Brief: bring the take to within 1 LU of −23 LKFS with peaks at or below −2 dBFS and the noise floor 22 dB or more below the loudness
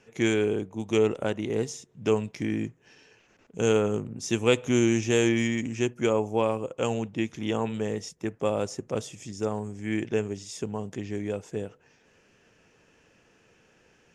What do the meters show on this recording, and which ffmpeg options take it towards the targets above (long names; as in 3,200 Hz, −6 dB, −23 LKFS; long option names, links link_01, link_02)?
integrated loudness −28.0 LKFS; sample peak −9.0 dBFS; target loudness −23.0 LKFS
→ -af "volume=5dB"